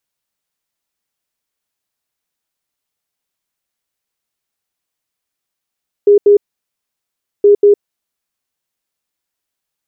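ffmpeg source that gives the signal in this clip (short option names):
-f lavfi -i "aevalsrc='0.668*sin(2*PI*409*t)*clip(min(mod(mod(t,1.37),0.19),0.11-mod(mod(t,1.37),0.19))/0.005,0,1)*lt(mod(t,1.37),0.38)':d=2.74:s=44100"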